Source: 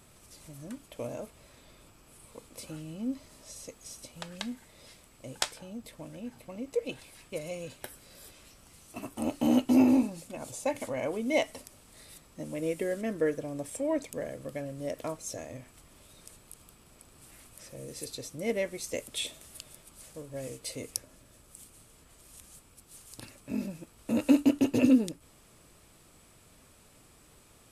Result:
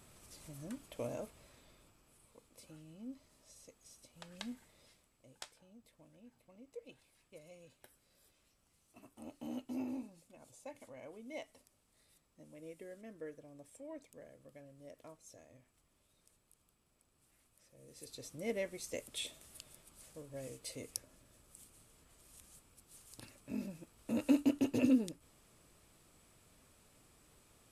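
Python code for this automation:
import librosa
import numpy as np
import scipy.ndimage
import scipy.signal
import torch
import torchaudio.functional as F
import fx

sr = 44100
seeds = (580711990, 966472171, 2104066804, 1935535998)

y = fx.gain(x, sr, db=fx.line((1.18, -3.5), (2.37, -14.0), (4.09, -14.0), (4.51, -7.0), (5.26, -19.0), (17.74, -19.0), (18.27, -7.5)))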